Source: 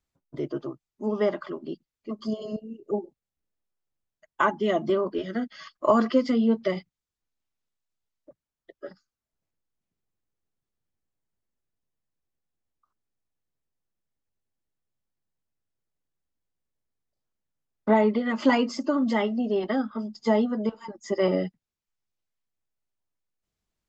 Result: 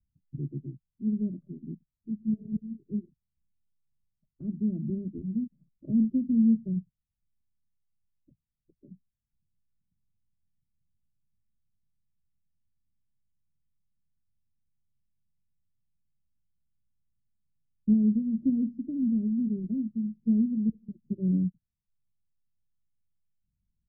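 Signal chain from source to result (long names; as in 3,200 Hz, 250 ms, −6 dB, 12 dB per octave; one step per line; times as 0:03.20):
inverse Chebyshev low-pass filter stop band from 880 Hz, stop band 70 dB
level +7.5 dB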